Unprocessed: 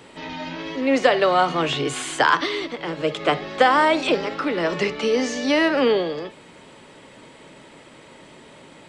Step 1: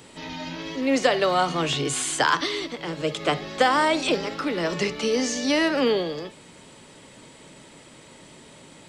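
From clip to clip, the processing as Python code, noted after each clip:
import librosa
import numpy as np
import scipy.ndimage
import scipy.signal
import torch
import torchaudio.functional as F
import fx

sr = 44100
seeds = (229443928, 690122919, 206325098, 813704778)

y = fx.bass_treble(x, sr, bass_db=5, treble_db=10)
y = F.gain(torch.from_numpy(y), -4.0).numpy()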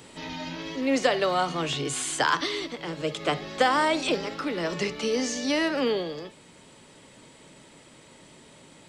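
y = fx.rider(x, sr, range_db=4, speed_s=2.0)
y = F.gain(torch.from_numpy(y), -3.5).numpy()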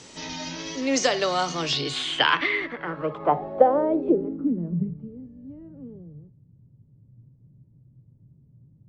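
y = fx.filter_sweep_lowpass(x, sr, from_hz=6100.0, to_hz=120.0, start_s=1.55, end_s=5.15, q=4.7)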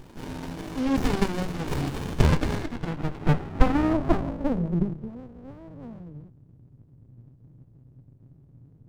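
y = fx.running_max(x, sr, window=65)
y = F.gain(torch.from_numpy(y), 3.0).numpy()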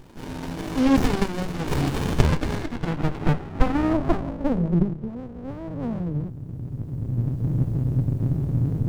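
y = fx.recorder_agc(x, sr, target_db=-10.0, rise_db_per_s=9.5, max_gain_db=30)
y = F.gain(torch.from_numpy(y), -1.0).numpy()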